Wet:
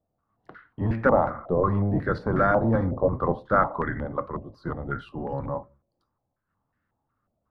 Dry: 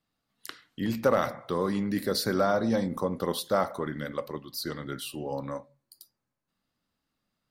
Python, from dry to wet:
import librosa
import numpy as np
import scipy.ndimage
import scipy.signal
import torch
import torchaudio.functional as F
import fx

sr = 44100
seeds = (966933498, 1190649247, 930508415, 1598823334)

y = fx.octave_divider(x, sr, octaves=1, level_db=3.0)
y = fx.filter_held_lowpass(y, sr, hz=5.5, low_hz=650.0, high_hz=1700.0)